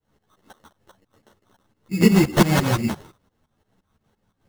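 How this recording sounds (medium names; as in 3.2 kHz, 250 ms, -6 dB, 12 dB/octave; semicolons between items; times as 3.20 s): phasing stages 8, 2.5 Hz, lowest notch 600–3100 Hz; aliases and images of a low sample rate 2.4 kHz, jitter 0%; tremolo saw up 5.8 Hz, depth 90%; a shimmering, thickened sound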